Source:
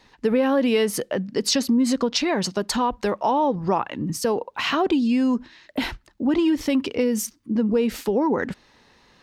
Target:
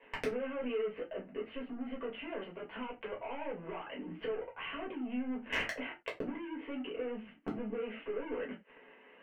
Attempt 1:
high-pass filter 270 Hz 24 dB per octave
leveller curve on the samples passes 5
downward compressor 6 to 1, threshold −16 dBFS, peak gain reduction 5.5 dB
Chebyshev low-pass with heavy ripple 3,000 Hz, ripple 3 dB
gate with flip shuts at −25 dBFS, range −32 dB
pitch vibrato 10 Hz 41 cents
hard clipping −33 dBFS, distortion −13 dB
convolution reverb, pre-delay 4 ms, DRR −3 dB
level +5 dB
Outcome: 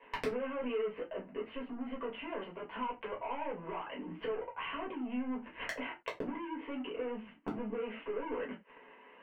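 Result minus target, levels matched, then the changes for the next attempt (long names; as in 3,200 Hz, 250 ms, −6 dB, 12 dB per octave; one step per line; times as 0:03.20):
1,000 Hz band +4.5 dB
add after Chebyshev low-pass with heavy ripple: parametric band 1,000 Hz −10 dB 0.26 octaves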